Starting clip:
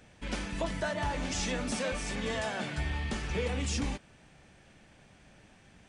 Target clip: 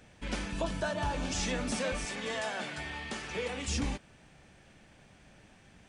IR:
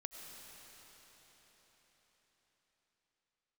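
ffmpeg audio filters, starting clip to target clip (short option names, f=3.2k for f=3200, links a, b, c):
-filter_complex "[0:a]asettb=1/sr,asplit=3[a][b][c];[a]atrim=end=0.534[d];[b]atrim=start=0.53:end=1.36,asetpts=PTS-STARTPTS,afade=t=in:d=0.004:c=qsin,afade=t=out:st=0.826:d=0.004:c=qsin,bandreject=f=2k:w=5.4[e];[c]atrim=start=1.356[f];[d][e]acrossfade=d=0.004:c1=hsin:c2=qsin[g];[g][f]acrossfade=d=0.004:c1=qsin:c2=hsin,asettb=1/sr,asplit=3[h][i][j];[h]atrim=end=2.054[k];[i]atrim=start=2.05:end=3.68,asetpts=PTS-STARTPTS,afade=t=in:d=0.004:c=qsin,afade=t=out:st=1.626:d=0.004:c=qsin,highpass=f=380:p=1[l];[j]atrim=start=3.676[m];[k][l]acrossfade=d=0.004:c1=hsin:c2=qsin[n];[n][m]acrossfade=d=0.004:c1=qsin:c2=hsin"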